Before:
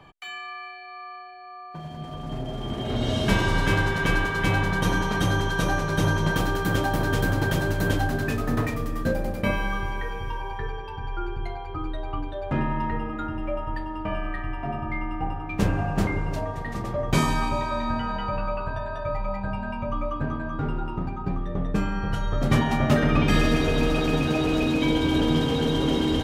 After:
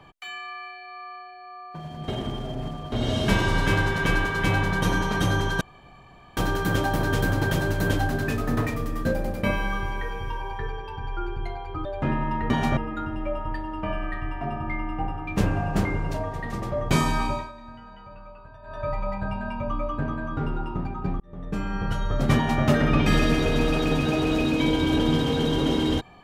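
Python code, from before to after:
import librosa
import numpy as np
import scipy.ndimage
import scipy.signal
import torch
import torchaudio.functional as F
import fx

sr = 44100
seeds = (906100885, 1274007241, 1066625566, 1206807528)

y = fx.edit(x, sr, fx.reverse_span(start_s=2.08, length_s=0.84),
    fx.room_tone_fill(start_s=5.61, length_s=0.76),
    fx.cut(start_s=11.85, length_s=0.49),
    fx.fade_down_up(start_s=17.5, length_s=1.58, db=-16.5, fade_s=0.24),
    fx.fade_in_span(start_s=21.42, length_s=0.6),
    fx.duplicate(start_s=22.58, length_s=0.27, to_s=12.99), tone=tone)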